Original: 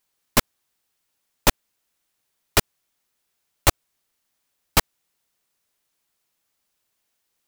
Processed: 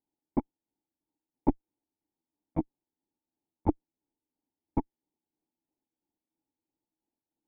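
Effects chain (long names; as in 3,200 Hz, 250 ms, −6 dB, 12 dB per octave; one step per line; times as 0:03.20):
pitch shifter gated in a rhythm +8.5 semitones, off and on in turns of 167 ms
asymmetric clip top −17.5 dBFS
formant resonators in series u
level +7 dB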